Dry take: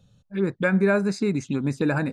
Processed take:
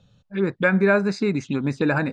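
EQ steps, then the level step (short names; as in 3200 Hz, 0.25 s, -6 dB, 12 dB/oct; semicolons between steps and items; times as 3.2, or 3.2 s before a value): LPF 4700 Hz 12 dB/oct; low shelf 470 Hz -5 dB; +5.0 dB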